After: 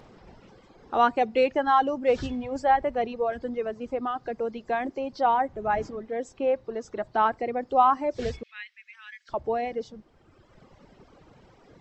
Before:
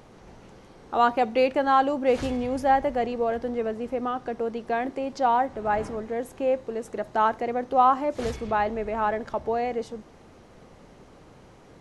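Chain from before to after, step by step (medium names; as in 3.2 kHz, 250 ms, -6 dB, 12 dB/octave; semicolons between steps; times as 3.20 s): knee-point frequency compression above 3.8 kHz 1.5:1; reverb removal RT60 1.7 s; 8.43–9.29 s: steep high-pass 1.9 kHz 36 dB/octave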